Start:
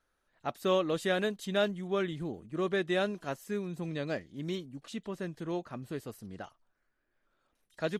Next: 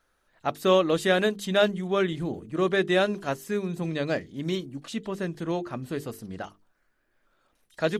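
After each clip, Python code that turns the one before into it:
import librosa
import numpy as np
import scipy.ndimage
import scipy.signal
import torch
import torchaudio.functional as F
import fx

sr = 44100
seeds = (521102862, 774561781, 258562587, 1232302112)

y = fx.hum_notches(x, sr, base_hz=50, count=9)
y = y * 10.0 ** (7.5 / 20.0)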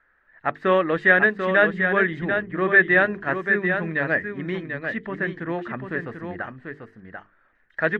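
y = fx.lowpass_res(x, sr, hz=1800.0, q=6.6)
y = y + 10.0 ** (-6.5 / 20.0) * np.pad(y, (int(741 * sr / 1000.0), 0))[:len(y)]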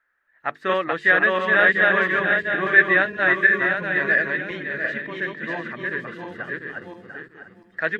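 y = fx.reverse_delay_fb(x, sr, ms=347, feedback_pct=49, wet_db=-1)
y = fx.tilt_eq(y, sr, slope=2.5)
y = fx.noise_reduce_blind(y, sr, reduce_db=7)
y = y * 10.0 ** (-2.0 / 20.0)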